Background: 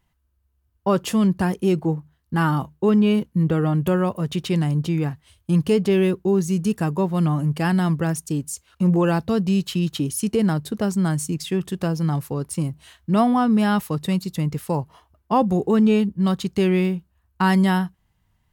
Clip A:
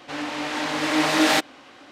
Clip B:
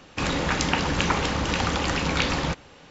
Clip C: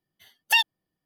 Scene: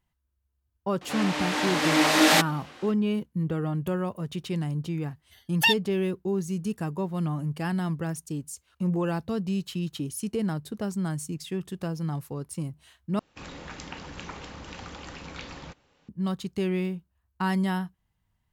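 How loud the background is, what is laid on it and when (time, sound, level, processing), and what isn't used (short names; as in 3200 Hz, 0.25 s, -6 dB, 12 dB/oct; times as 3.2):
background -8.5 dB
1.01 add A -0.5 dB + high shelf 9800 Hz +8.5 dB
5.11 add C -1.5 dB
13.19 replace with B -16.5 dB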